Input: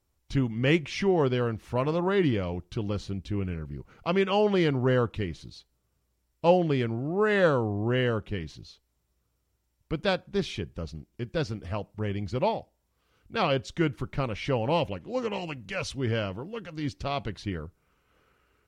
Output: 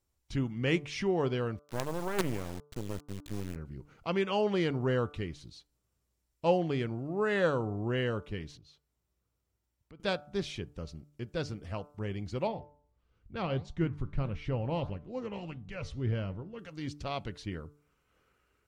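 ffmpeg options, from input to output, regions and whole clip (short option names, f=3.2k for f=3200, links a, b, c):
-filter_complex "[0:a]asettb=1/sr,asplit=3[a][b][c];[a]atrim=end=1.594[d];[b]atrim=start=1.59:end=3.56,asetpts=PTS-STARTPTS,afade=t=in:d=0.004:c=qsin,afade=t=out:st=1.966:d=0.004:c=qsin,lowpass=2.3k,acrusher=bits=4:dc=4:mix=0:aa=0.000001[e];[c]atrim=start=3.556[f];[d][e]acrossfade=d=0.004:c1=hsin:c2=qsin[g];[g][f]acrossfade=d=0.004:c1=qsin:c2=hsin,asettb=1/sr,asplit=3[h][i][j];[h]atrim=end=8.574[k];[i]atrim=start=8.57:end=10,asetpts=PTS-STARTPTS,afade=t=in:d=0.004:c=qsin,afade=t=out:st=1.426:d=0.004:c=qsin,equalizer=f=8k:w=0.5:g=-5,acompressor=threshold=-51dB:ratio=2.5:attack=3.2:release=140:knee=1:detection=peak,highpass=44[l];[j]atrim=start=9.996[m];[k][l]acrossfade=d=0.004:c1=hsin:c2=qsin[n];[n][m]acrossfade=d=0.004:c1=qsin:c2=hsin,asettb=1/sr,asplit=3[o][p][q];[o]atrim=end=12.474[r];[p]atrim=start=12.47:end=16.59,asetpts=PTS-STARTPTS,afade=t=in:d=0.004:c=qsin,afade=t=out:st=4.116:d=0.004:c=qsin,aemphasis=mode=reproduction:type=bsi,flanger=delay=4.4:depth=7:regen=86:speed=1.6:shape=sinusoidal[s];[q]atrim=start=16.586[t];[r][s]acrossfade=d=0.004:c1=hsin:c2=qsin[u];[u][t]acrossfade=d=0.004:c1=qsin:c2=hsin,equalizer=f=7.7k:w=1.1:g=3.5,bandreject=f=146.8:t=h:w=4,bandreject=f=293.6:t=h:w=4,bandreject=f=440.4:t=h:w=4,bandreject=f=587.2:t=h:w=4,bandreject=f=734:t=h:w=4,bandreject=f=880.8:t=h:w=4,bandreject=f=1.0276k:t=h:w=4,bandreject=f=1.1744k:t=h:w=4,bandreject=f=1.3212k:t=h:w=4,bandreject=f=1.468k:t=h:w=4,volume=-5.5dB"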